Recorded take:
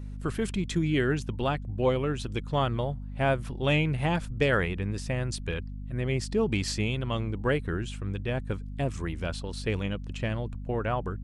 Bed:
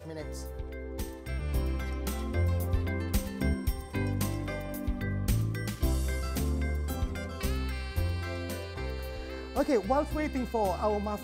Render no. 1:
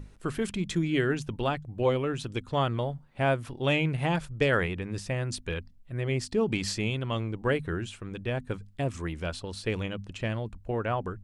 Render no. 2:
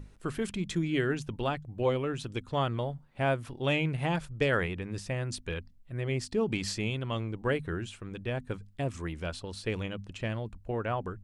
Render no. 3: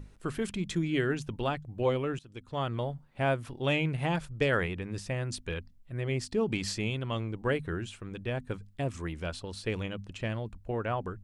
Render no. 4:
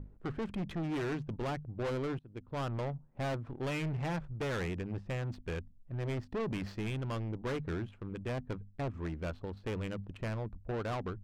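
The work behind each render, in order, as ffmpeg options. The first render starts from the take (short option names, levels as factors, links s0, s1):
-af "bandreject=f=50:t=h:w=6,bandreject=f=100:t=h:w=6,bandreject=f=150:t=h:w=6,bandreject=f=200:t=h:w=6,bandreject=f=250:t=h:w=6"
-af "volume=0.75"
-filter_complex "[0:a]asplit=2[s0][s1];[s0]atrim=end=2.19,asetpts=PTS-STARTPTS,afade=t=out:st=2.186:d=0.004:c=hsin:silence=0.0891251[s2];[s1]atrim=start=2.19,asetpts=PTS-STARTPTS,afade=t=in:d=0.64:silence=0.0891251[s3];[s2][s3]concat=n=2:v=0:a=1"
-af "volume=39.8,asoftclip=hard,volume=0.0251,adynamicsmooth=sensitivity=6.5:basefreq=720"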